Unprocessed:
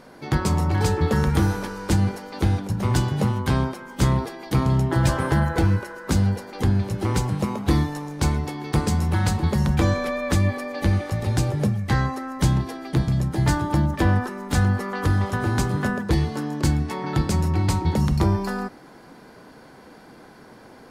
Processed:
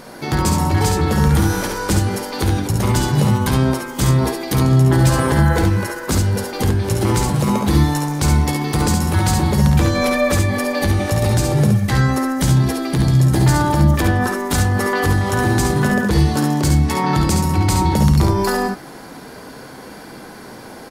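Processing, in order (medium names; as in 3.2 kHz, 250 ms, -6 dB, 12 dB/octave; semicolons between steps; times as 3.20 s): peak limiter -18 dBFS, peak gain reduction 9.5 dB; treble shelf 5.6 kHz +9 dB; early reflections 54 ms -9.5 dB, 69 ms -5 dB; trim +8.5 dB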